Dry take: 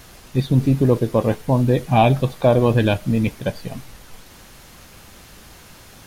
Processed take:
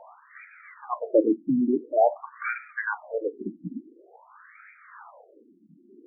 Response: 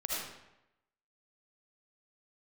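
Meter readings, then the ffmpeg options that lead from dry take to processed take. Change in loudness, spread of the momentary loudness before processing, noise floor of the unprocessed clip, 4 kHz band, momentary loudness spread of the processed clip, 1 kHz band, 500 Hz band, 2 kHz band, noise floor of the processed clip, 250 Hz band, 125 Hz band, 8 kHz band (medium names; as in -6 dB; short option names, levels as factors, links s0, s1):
-8.0 dB, 12 LU, -45 dBFS, under -40 dB, 17 LU, -7.5 dB, -6.5 dB, -2.5 dB, -58 dBFS, -7.5 dB, -29.5 dB, under -40 dB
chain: -af "bandreject=f=790:w=23,aphaser=in_gain=1:out_gain=1:delay=3.2:decay=0.53:speed=0.4:type=sinusoidal,afftfilt=real='re*between(b*sr/1024,240*pow(1800/240,0.5+0.5*sin(2*PI*0.48*pts/sr))/1.41,240*pow(1800/240,0.5+0.5*sin(2*PI*0.48*pts/sr))*1.41)':imag='im*between(b*sr/1024,240*pow(1800/240,0.5+0.5*sin(2*PI*0.48*pts/sr))/1.41,240*pow(1800/240,0.5+0.5*sin(2*PI*0.48*pts/sr))*1.41)':win_size=1024:overlap=0.75,volume=1.19"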